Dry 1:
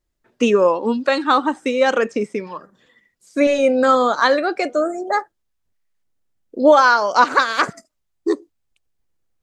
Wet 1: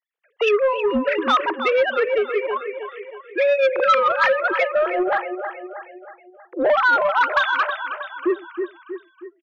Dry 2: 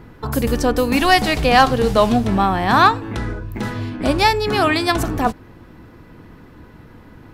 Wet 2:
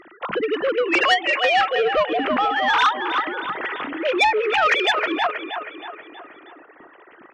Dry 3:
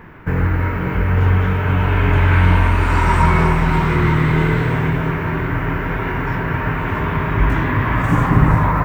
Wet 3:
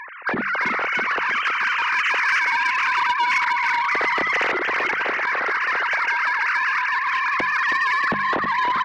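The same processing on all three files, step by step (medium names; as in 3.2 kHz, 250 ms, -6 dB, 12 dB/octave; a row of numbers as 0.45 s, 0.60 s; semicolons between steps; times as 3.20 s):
formants replaced by sine waves; dynamic bell 840 Hz, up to -5 dB, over -23 dBFS, Q 0.94; hum notches 50/100/150/200 Hz; on a send: feedback delay 318 ms, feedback 49%, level -10.5 dB; on the sum: compression 2.5:1, threshold -18 dBFS; saturation -15 dBFS; tilt shelf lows -5 dB, about 1.2 kHz; normalise loudness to -20 LUFS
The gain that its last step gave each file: +6.5 dB, +5.0 dB, +1.0 dB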